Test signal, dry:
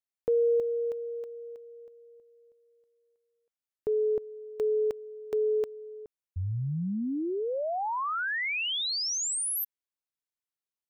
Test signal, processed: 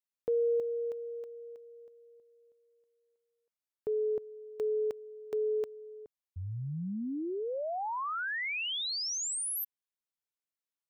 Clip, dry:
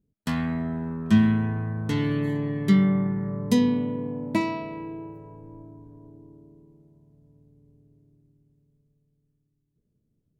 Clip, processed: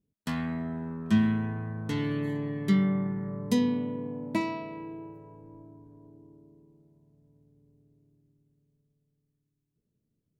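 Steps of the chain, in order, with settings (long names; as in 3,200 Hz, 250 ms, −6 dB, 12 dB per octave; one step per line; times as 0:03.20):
low-shelf EQ 74 Hz −8 dB
level −4 dB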